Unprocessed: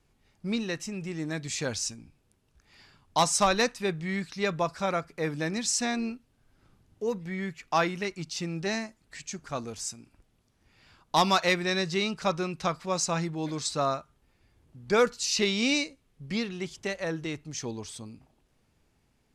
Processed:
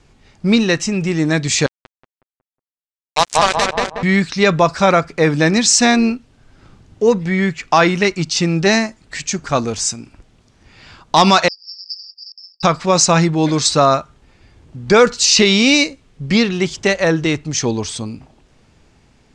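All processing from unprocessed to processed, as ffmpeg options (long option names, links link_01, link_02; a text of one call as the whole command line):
ffmpeg -i in.wav -filter_complex "[0:a]asettb=1/sr,asplit=3[link_01][link_02][link_03];[link_01]atrim=end=1.664[link_04];[link_02]atrim=start=1.66:end=4.03,asetpts=PTS-STARTPTS,afade=type=in:duration=0.004:curve=qsin,afade=type=out:start_time=2.366:duration=0.004:curve=qsin,aeval=exprs='val(0)+0.00316*(sin(2*PI*50*n/s)+sin(2*PI*2*50*n/s)/2+sin(2*PI*3*50*n/s)/3+sin(2*PI*4*50*n/s)/4+sin(2*PI*5*50*n/s)/5)':channel_layout=same,acrusher=bits=2:mix=0:aa=0.5,asplit=2[link_05][link_06];[link_06]adelay=183,lowpass=frequency=1600:poles=1,volume=-3.5dB,asplit=2[link_07][link_08];[link_08]adelay=183,lowpass=frequency=1600:poles=1,volume=0.42,asplit=2[link_09][link_10];[link_10]adelay=183,lowpass=frequency=1600:poles=1,volume=0.42,asplit=2[link_11][link_12];[link_12]adelay=183,lowpass=frequency=1600:poles=1,volume=0.42,asplit=2[link_13][link_14];[link_14]adelay=183,lowpass=frequency=1600:poles=1,volume=0.42[link_15];[link_05][link_07][link_09][link_11][link_13][link_15]amix=inputs=6:normalize=0,atrim=end_sample=104517[link_16];[link_03]atrim=start=4.026[link_17];[link_04][link_16]acrossfade=duration=0.004:curve1=hsin:curve2=qsin[link_18];[link_18][link_17]acrossfade=duration=0.004:curve1=qsin:curve2=hsin,asettb=1/sr,asplit=3[link_19][link_20][link_21];[link_19]atrim=end=11.484[link_22];[link_20]atrim=start=11.48:end=12.63,asetpts=PTS-STARTPTS,afade=type=in:duration=0.004:curve=qsin,afade=type=out:start_time=1.146:duration=0.004:curve=qsin,asoftclip=type=hard:threshold=-25.5dB,asuperpass=centerf=5000:order=12:qfactor=6.1[link_23];[link_21]atrim=start=12.626[link_24];[link_22][link_23]acrossfade=duration=0.004:curve1=hsin:curve2=qsin[link_25];[link_25][link_24]acrossfade=duration=0.004:curve1=qsin:curve2=hsin,lowpass=frequency=8100:width=0.5412,lowpass=frequency=8100:width=1.3066,alimiter=level_in=18dB:limit=-1dB:release=50:level=0:latency=1,volume=-1dB" out.wav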